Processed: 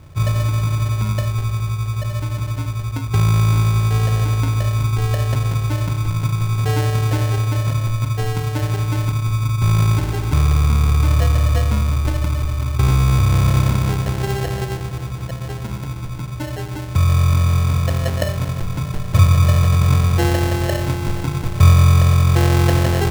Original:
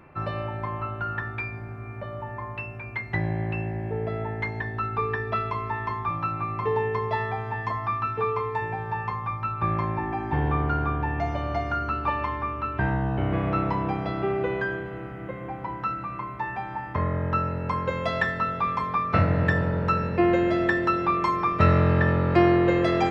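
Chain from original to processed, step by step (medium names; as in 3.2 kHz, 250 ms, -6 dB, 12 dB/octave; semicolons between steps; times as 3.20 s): resonant low shelf 160 Hz +13.5 dB, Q 1.5; in parallel at -2.5 dB: compressor with a negative ratio -15 dBFS, ratio -0.5; on the sum: sample-and-hold 37×; trim -4 dB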